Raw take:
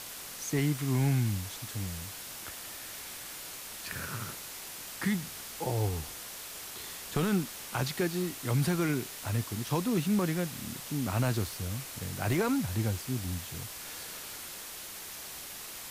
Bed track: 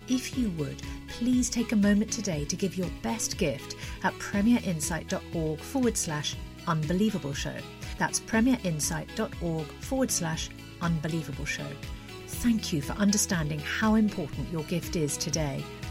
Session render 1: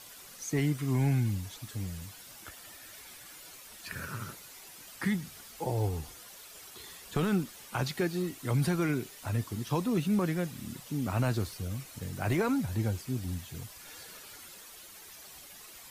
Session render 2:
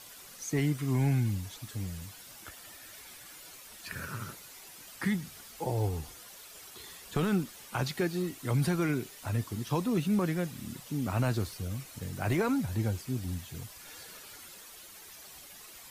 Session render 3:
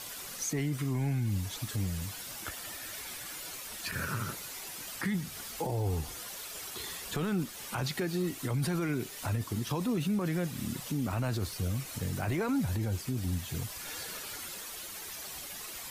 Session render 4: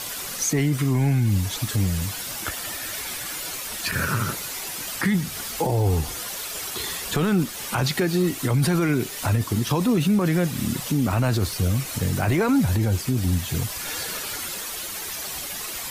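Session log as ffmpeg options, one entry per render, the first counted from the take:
-af "afftdn=nr=10:nf=-44"
-af anull
-filter_complex "[0:a]asplit=2[a][b];[b]acompressor=threshold=-40dB:ratio=6,volume=2.5dB[c];[a][c]amix=inputs=2:normalize=0,alimiter=limit=-24dB:level=0:latency=1:release=20"
-af "volume=10.5dB"

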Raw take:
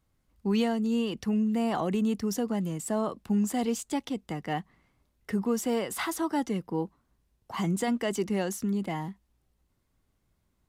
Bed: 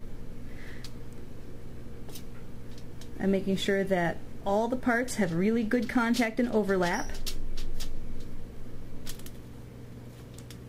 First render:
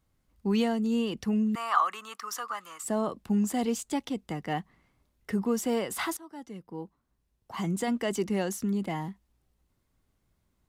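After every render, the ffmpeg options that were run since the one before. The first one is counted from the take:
-filter_complex "[0:a]asettb=1/sr,asplit=3[a][b][c];[a]atrim=end=1.554[d];[b]atrim=start=1.55:end=2.84,asetpts=PTS-STARTPTS,afade=t=in:d=0.004:c=qsin,afade=t=out:st=1.286:d=0.004:c=qsin,highpass=f=1.2k:t=q:w=9[e];[c]atrim=start=2.836[f];[d][e]acrossfade=d=0.004:c1=hsin:c2=qsin[g];[g][f]acrossfade=d=0.004:c1=qsin:c2=hsin,asplit=2[h][i];[h]atrim=end=6.17,asetpts=PTS-STARTPTS,afade=t=out:st=6.166:d=0.004:c=hsin:silence=0.0891251[j];[i]atrim=start=6.17,asetpts=PTS-STARTPTS,afade=t=in:d=1.96:silence=0.0891251[k];[j][k]concat=n=2:v=0:a=1"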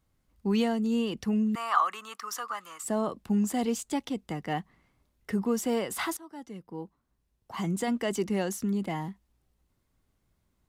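-af anull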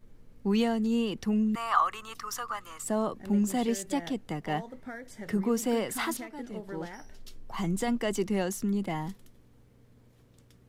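-filter_complex "[1:a]volume=-15dB[a];[0:a][a]amix=inputs=2:normalize=0"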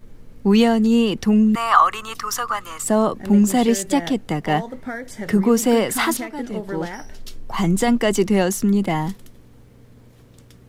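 -af "volume=11.5dB,alimiter=limit=-1dB:level=0:latency=1"

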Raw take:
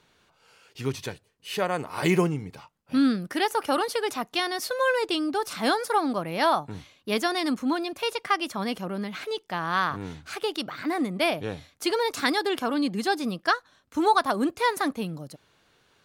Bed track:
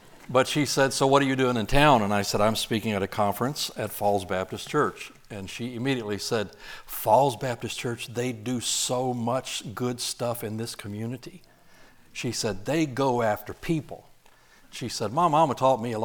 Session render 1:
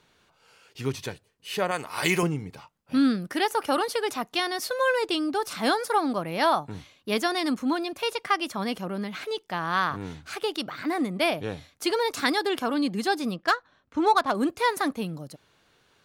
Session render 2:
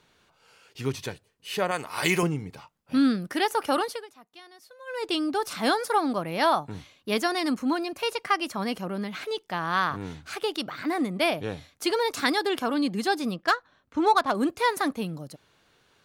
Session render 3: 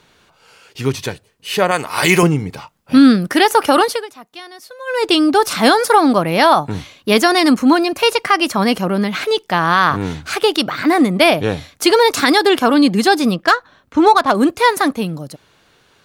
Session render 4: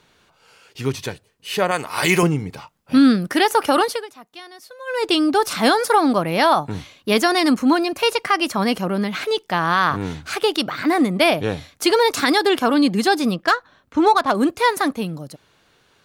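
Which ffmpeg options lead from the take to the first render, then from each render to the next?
-filter_complex "[0:a]asettb=1/sr,asplit=3[a][b][c];[a]atrim=end=1.714[d];[b]atrim=start=1.71:end=2.23,asetpts=PTS-STARTPTS,afade=t=in:d=0.004:c=qsin,afade=t=out:st=0.516:d=0.004:c=qsin,tiltshelf=f=970:g=-6[e];[c]atrim=start=2.226[f];[d][e]acrossfade=d=0.004:c1=hsin:c2=qsin[g];[g][f]acrossfade=d=0.004:c1=qsin:c2=hsin,asettb=1/sr,asplit=3[h][i][j];[h]atrim=end=13.344[k];[i]atrim=start=13.34:end=14.35,asetpts=PTS-STARTPTS,afade=t=in:d=0.004:c=qsin,afade=t=out:st=1.006:d=0.004:c=qsin,adynamicsmooth=sensitivity=4:basefreq=3.5k[l];[j]atrim=start=14.346[m];[k][l]acrossfade=d=0.004:c1=hsin:c2=qsin[n];[n][m]acrossfade=d=0.004:c1=qsin:c2=hsin"
-filter_complex "[0:a]asettb=1/sr,asplit=3[a][b][c];[a]atrim=end=7.224[d];[b]atrim=start=7.22:end=8.88,asetpts=PTS-STARTPTS,afade=t=in:d=0.004:c=qsin,afade=t=out:st=1.656:d=0.004:c=qsin,bandreject=f=3.5k:w=12[e];[c]atrim=start=8.876[f];[d][e]acrossfade=d=0.004:c1=hsin:c2=qsin[g];[g][f]acrossfade=d=0.004:c1=qsin:c2=hsin,asplit=3[h][i][j];[h]atrim=end=4.07,asetpts=PTS-STARTPTS,afade=t=out:st=3.79:d=0.28:silence=0.0794328[k];[i]atrim=start=4.07:end=4.86,asetpts=PTS-STARTPTS,volume=-22dB[l];[j]atrim=start=4.86,asetpts=PTS-STARTPTS,afade=t=in:d=0.28:silence=0.0794328[m];[k][l][m]concat=n=3:v=0:a=1"
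-af "dynaudnorm=f=200:g=21:m=4dB,alimiter=level_in=10.5dB:limit=-1dB:release=50:level=0:latency=1"
-af "volume=-4.5dB"

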